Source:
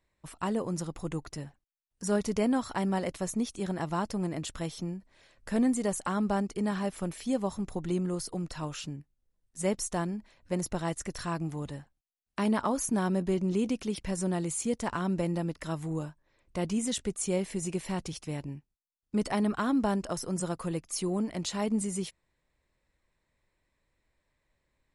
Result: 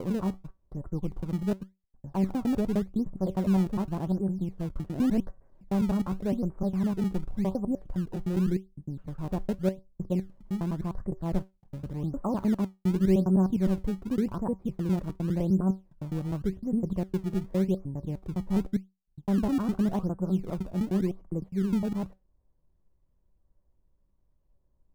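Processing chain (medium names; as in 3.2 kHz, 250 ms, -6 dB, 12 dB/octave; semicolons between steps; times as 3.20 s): slices played last to first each 102 ms, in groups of 7; low-pass 1.2 kHz 24 dB/octave; tilt EQ -3 dB/octave; feedback comb 190 Hz, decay 0.22 s, harmonics all, mix 60%; in parallel at -11 dB: decimation with a swept rate 24×, swing 160% 0.88 Hz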